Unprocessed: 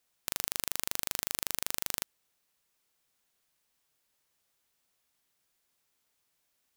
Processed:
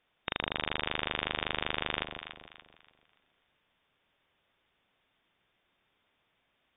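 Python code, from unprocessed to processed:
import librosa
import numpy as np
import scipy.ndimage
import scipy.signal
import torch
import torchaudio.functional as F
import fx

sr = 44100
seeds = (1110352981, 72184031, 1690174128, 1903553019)

y = fx.brickwall_lowpass(x, sr, high_hz=3700.0)
y = fx.echo_alternate(y, sr, ms=144, hz=800.0, feedback_pct=59, wet_db=-5.0)
y = y * 10.0 ** (8.0 / 20.0)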